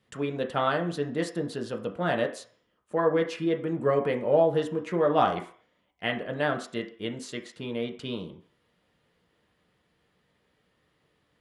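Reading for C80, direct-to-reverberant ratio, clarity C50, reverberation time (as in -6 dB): 15.5 dB, 2.0 dB, 11.0 dB, 0.50 s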